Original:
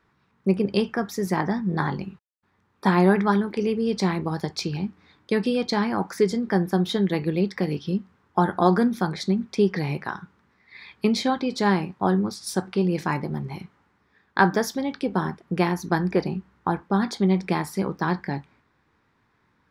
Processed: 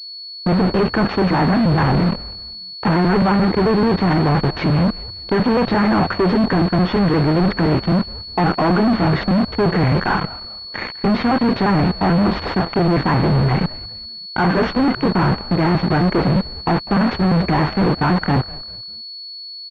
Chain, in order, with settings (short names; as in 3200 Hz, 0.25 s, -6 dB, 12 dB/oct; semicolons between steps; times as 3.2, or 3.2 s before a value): trilling pitch shifter -1.5 st, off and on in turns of 87 ms; sample leveller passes 1; reverse; compressor 16:1, threshold -25 dBFS, peak gain reduction 15.5 dB; reverse; fuzz box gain 44 dB, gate -45 dBFS; frequency-shifting echo 0.199 s, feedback 34%, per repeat -120 Hz, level -18.5 dB; pulse-width modulation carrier 4400 Hz